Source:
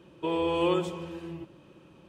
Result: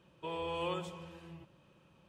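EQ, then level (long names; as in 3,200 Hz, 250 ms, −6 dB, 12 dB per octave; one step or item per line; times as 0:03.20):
parametric band 330 Hz −10 dB 0.8 octaves
−7.0 dB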